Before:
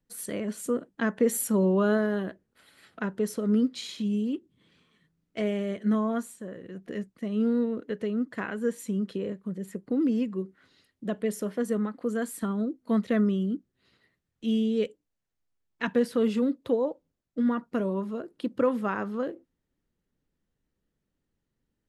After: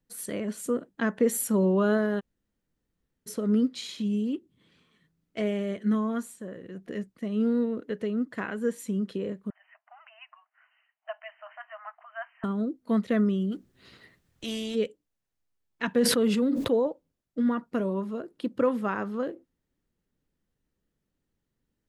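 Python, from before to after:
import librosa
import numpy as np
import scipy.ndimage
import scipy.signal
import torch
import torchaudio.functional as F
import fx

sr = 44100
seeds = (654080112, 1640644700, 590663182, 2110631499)

y = fx.peak_eq(x, sr, hz=680.0, db=-6.5, octaves=0.77, at=(5.8, 6.22))
y = fx.brickwall_bandpass(y, sr, low_hz=620.0, high_hz=3100.0, at=(9.5, 12.44))
y = fx.spectral_comp(y, sr, ratio=2.0, at=(13.51, 14.74), fade=0.02)
y = fx.sustainer(y, sr, db_per_s=30.0, at=(15.99, 16.87))
y = fx.edit(y, sr, fx.room_tone_fill(start_s=2.2, length_s=1.07, crossfade_s=0.02), tone=tone)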